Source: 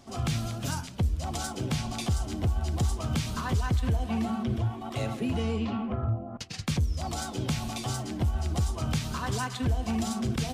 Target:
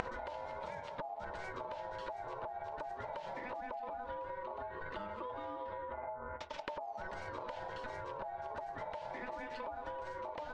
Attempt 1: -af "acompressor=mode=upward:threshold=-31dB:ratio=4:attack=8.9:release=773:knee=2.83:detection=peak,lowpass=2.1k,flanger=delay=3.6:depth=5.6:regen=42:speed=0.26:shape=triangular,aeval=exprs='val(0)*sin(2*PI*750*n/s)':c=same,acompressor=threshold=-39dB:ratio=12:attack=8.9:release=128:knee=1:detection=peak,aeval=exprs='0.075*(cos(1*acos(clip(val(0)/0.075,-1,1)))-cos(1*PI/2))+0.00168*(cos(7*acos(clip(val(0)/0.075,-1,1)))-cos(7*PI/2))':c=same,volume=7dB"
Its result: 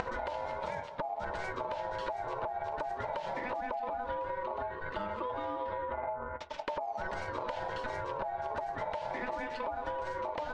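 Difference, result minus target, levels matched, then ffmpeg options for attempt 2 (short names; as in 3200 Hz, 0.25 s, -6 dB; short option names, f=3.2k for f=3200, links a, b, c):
compressor: peak gain reduction -6.5 dB
-af "acompressor=mode=upward:threshold=-31dB:ratio=4:attack=8.9:release=773:knee=2.83:detection=peak,lowpass=2.1k,flanger=delay=3.6:depth=5.6:regen=42:speed=0.26:shape=triangular,aeval=exprs='val(0)*sin(2*PI*750*n/s)':c=same,acompressor=threshold=-46dB:ratio=12:attack=8.9:release=128:knee=1:detection=peak,aeval=exprs='0.075*(cos(1*acos(clip(val(0)/0.075,-1,1)))-cos(1*PI/2))+0.00168*(cos(7*acos(clip(val(0)/0.075,-1,1)))-cos(7*PI/2))':c=same,volume=7dB"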